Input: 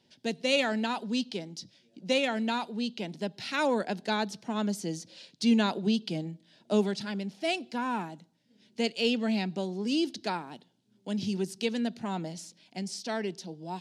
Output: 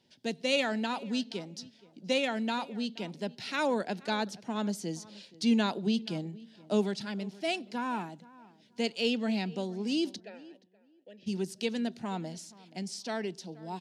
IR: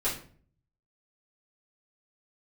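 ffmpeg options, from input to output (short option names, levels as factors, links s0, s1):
-filter_complex "[0:a]asplit=3[s0][s1][s2];[s0]afade=t=out:st=10.19:d=0.02[s3];[s1]asplit=3[s4][s5][s6];[s4]bandpass=f=530:t=q:w=8,volume=1[s7];[s5]bandpass=f=1840:t=q:w=8,volume=0.501[s8];[s6]bandpass=f=2480:t=q:w=8,volume=0.355[s9];[s7][s8][s9]amix=inputs=3:normalize=0,afade=t=in:st=10.19:d=0.02,afade=t=out:st=11.26:d=0.02[s10];[s2]afade=t=in:st=11.26:d=0.02[s11];[s3][s10][s11]amix=inputs=3:normalize=0,asplit=2[s12][s13];[s13]adelay=475,lowpass=f=2200:p=1,volume=0.0944,asplit=2[s14][s15];[s15]adelay=475,lowpass=f=2200:p=1,volume=0.2[s16];[s14][s16]amix=inputs=2:normalize=0[s17];[s12][s17]amix=inputs=2:normalize=0,volume=0.794"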